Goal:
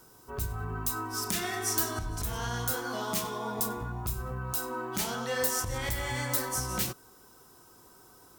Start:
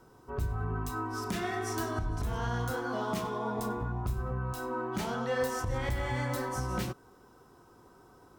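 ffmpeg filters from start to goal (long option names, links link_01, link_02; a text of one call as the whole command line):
ffmpeg -i in.wav -af "crystalizer=i=5:c=0,volume=-2.5dB" out.wav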